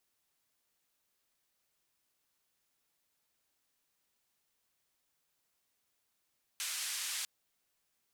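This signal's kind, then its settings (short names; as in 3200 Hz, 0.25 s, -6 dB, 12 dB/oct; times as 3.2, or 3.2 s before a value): noise band 1700–10000 Hz, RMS -38.5 dBFS 0.65 s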